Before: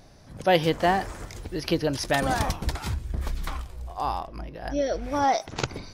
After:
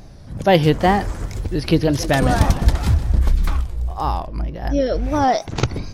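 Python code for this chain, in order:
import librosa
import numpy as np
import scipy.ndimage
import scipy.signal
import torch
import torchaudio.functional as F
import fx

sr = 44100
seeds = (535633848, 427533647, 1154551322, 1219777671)

y = fx.low_shelf(x, sr, hz=270.0, db=10.5)
y = fx.wow_flutter(y, sr, seeds[0], rate_hz=2.1, depth_cents=91.0)
y = fx.echo_warbled(y, sr, ms=152, feedback_pct=68, rate_hz=2.8, cents=127, wet_db=-14.5, at=(1.14, 3.19))
y = y * 10.0 ** (4.0 / 20.0)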